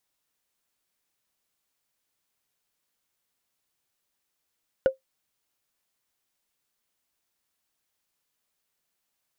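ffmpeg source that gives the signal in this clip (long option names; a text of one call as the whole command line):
ffmpeg -f lavfi -i "aevalsrc='0.251*pow(10,-3*t/0.13)*sin(2*PI*529*t)+0.0631*pow(10,-3*t/0.038)*sin(2*PI*1458.5*t)+0.0158*pow(10,-3*t/0.017)*sin(2*PI*2858.7*t)+0.00398*pow(10,-3*t/0.009)*sin(2*PI*4725.6*t)+0.001*pow(10,-3*t/0.006)*sin(2*PI*7056.9*t)':duration=0.45:sample_rate=44100" out.wav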